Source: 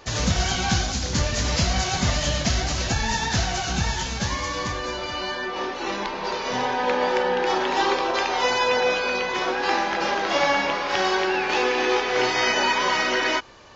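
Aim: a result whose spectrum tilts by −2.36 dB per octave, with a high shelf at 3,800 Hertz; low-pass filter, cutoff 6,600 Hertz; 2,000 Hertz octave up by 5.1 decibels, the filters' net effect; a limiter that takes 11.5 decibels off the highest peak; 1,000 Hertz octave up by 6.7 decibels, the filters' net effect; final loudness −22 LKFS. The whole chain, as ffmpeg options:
ffmpeg -i in.wav -af "lowpass=6600,equalizer=frequency=1000:width_type=o:gain=7.5,equalizer=frequency=2000:width_type=o:gain=6,highshelf=frequency=3800:gain=-8.5,volume=1dB,alimiter=limit=-13dB:level=0:latency=1" out.wav

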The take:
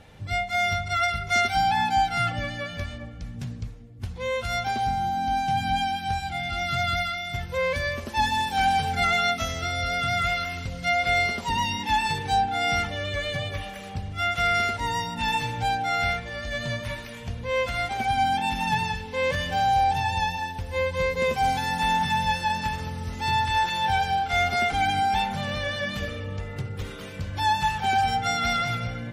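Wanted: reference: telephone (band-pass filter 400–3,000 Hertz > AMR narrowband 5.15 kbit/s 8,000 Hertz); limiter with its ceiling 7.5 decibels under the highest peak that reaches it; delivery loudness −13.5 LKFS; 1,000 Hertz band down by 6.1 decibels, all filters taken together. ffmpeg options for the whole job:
ffmpeg -i in.wav -af "equalizer=frequency=1000:width_type=o:gain=-8.5,alimiter=limit=-22.5dB:level=0:latency=1,highpass=400,lowpass=3000,volume=21dB" -ar 8000 -c:a libopencore_amrnb -b:a 5150 out.amr

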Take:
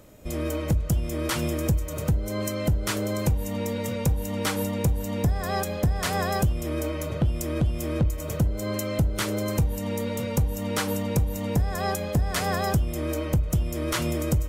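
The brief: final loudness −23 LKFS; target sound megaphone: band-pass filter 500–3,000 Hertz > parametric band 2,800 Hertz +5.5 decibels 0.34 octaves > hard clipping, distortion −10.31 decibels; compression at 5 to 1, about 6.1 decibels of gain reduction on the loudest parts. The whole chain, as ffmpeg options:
ffmpeg -i in.wav -af "acompressor=threshold=-25dB:ratio=5,highpass=500,lowpass=3000,equalizer=frequency=2800:width_type=o:width=0.34:gain=5.5,asoftclip=type=hard:threshold=-33dB,volume=15dB" out.wav

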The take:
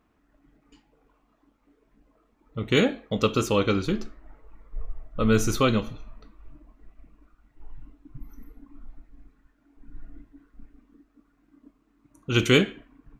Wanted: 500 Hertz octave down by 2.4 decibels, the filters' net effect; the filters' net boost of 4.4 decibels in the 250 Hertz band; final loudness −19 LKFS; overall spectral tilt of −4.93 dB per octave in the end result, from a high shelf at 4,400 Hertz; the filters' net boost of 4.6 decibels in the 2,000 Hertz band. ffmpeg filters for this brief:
ffmpeg -i in.wav -af "equalizer=frequency=250:width_type=o:gain=6.5,equalizer=frequency=500:width_type=o:gain=-5.5,equalizer=frequency=2000:width_type=o:gain=5.5,highshelf=frequency=4400:gain=3,volume=2.5dB" out.wav

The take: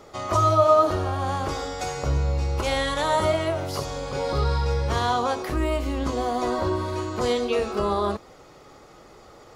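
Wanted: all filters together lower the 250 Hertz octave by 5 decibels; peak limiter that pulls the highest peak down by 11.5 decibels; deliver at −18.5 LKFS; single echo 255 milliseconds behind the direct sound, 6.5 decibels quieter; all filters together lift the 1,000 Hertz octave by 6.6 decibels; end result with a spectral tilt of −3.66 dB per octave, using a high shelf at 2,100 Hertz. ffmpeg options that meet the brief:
ffmpeg -i in.wav -af "equalizer=frequency=250:width_type=o:gain=-8,equalizer=frequency=1000:width_type=o:gain=6.5,highshelf=frequency=2100:gain=9,alimiter=limit=-13dB:level=0:latency=1,aecho=1:1:255:0.473,volume=4.5dB" out.wav

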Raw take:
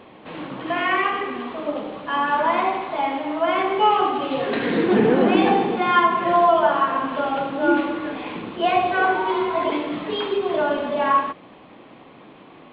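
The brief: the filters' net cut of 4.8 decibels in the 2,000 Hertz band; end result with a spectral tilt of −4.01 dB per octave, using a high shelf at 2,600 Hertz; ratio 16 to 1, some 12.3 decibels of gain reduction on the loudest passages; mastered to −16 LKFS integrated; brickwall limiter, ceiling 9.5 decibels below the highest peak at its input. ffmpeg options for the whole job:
ffmpeg -i in.wav -af "equalizer=frequency=2000:width_type=o:gain=-3.5,highshelf=frequency=2600:gain=-7.5,acompressor=threshold=-25dB:ratio=16,volume=18dB,alimiter=limit=-8dB:level=0:latency=1" out.wav

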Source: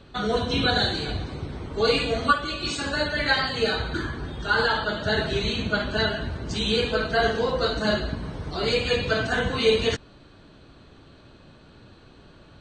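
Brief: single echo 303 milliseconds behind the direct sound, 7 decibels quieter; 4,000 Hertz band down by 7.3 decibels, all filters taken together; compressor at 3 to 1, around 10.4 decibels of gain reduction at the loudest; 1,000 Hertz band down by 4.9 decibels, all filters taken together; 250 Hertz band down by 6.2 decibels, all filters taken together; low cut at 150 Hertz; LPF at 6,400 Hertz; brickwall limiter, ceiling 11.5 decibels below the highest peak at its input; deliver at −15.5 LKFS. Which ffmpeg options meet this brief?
ffmpeg -i in.wav -af "highpass=150,lowpass=6400,equalizer=frequency=250:width_type=o:gain=-6.5,equalizer=frequency=1000:width_type=o:gain=-6,equalizer=frequency=4000:width_type=o:gain=-8,acompressor=threshold=-33dB:ratio=3,alimiter=level_in=8.5dB:limit=-24dB:level=0:latency=1,volume=-8.5dB,aecho=1:1:303:0.447,volume=24.5dB" out.wav

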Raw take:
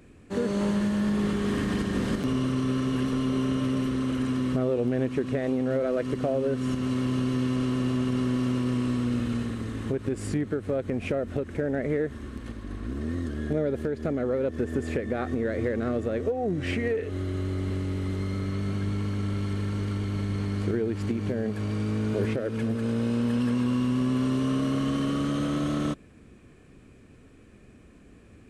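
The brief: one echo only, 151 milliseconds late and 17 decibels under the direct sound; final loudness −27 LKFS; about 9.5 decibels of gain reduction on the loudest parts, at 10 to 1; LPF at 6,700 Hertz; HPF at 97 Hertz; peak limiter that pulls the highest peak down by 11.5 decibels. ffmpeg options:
ffmpeg -i in.wav -af "highpass=97,lowpass=6700,acompressor=threshold=-32dB:ratio=10,alimiter=level_in=8.5dB:limit=-24dB:level=0:latency=1,volume=-8.5dB,aecho=1:1:151:0.141,volume=13.5dB" out.wav

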